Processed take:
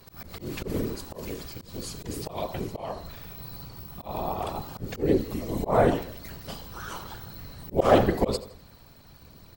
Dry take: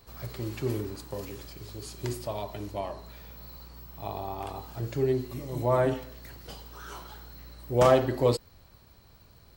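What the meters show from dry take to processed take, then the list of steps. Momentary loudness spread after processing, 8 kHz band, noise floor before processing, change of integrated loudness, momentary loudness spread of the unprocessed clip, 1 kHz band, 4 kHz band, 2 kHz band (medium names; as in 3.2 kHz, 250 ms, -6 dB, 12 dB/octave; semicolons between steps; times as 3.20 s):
18 LU, +2.5 dB, -57 dBFS, +0.5 dB, 21 LU, +3.0 dB, +2.5 dB, +3.5 dB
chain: whisper effect; feedback delay 82 ms, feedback 41%, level -21 dB; slow attack 152 ms; trim +5 dB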